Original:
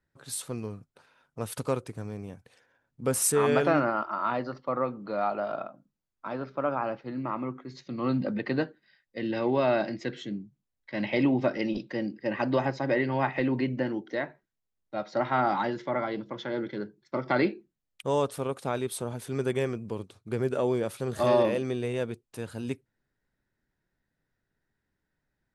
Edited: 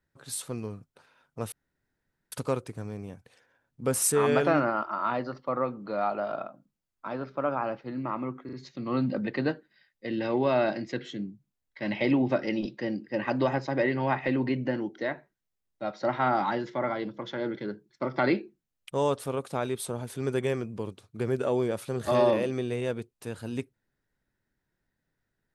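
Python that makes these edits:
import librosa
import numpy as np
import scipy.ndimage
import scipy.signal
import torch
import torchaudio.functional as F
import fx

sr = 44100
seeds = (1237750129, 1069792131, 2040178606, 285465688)

y = fx.edit(x, sr, fx.insert_room_tone(at_s=1.52, length_s=0.8),
    fx.stutter(start_s=7.65, slice_s=0.04, count=3), tone=tone)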